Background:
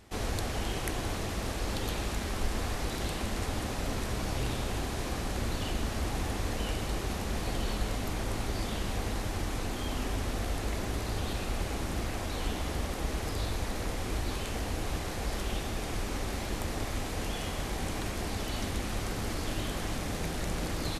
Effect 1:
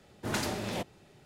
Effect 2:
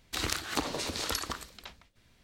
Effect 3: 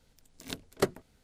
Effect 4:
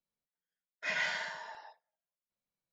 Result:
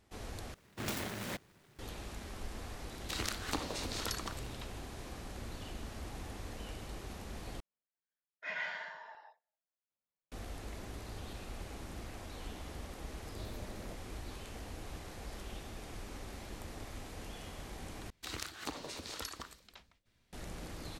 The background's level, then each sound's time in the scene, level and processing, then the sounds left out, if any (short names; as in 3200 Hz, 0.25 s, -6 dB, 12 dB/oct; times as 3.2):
background -12 dB
0.54 replace with 1 -6 dB + noise-modulated delay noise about 1300 Hz, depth 0.29 ms
2.96 add 2 -6 dB
7.6 replace with 4 -4.5 dB + tone controls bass -5 dB, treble -14 dB
13.11 add 1 -15 dB + brick-wall FIR band-stop 720–12000 Hz
18.1 replace with 2 -10 dB
not used: 3